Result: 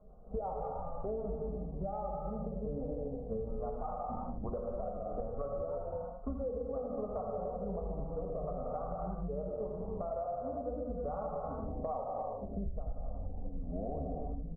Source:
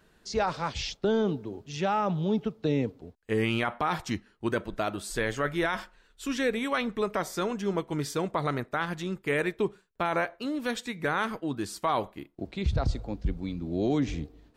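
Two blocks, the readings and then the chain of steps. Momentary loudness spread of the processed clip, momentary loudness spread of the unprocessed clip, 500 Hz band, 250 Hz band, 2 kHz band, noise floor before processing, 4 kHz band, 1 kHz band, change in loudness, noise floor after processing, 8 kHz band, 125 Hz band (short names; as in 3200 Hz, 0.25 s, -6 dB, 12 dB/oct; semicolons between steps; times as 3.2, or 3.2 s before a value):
3 LU, 7 LU, -6.5 dB, -12.0 dB, under -35 dB, -65 dBFS, under -40 dB, -9.0 dB, -9.0 dB, -43 dBFS, under -35 dB, -9.0 dB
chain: octaver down 2 oct, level -4 dB; steep low-pass 1100 Hz 72 dB/oct; comb 1.5 ms, depth 91%; rotary speaker horn 5.5 Hz, later 1.2 Hz, at 1.19; flange 0.64 Hz, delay 4.7 ms, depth 4.5 ms, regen -38%; bell 120 Hz -14.5 dB 0.86 oct; echo 80 ms -8.5 dB; non-linear reverb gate 0.38 s flat, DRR -2 dB; wow and flutter 23 cents; compressor 12:1, threshold -44 dBFS, peak gain reduction 27.5 dB; notch 870 Hz, Q 16; gain +9.5 dB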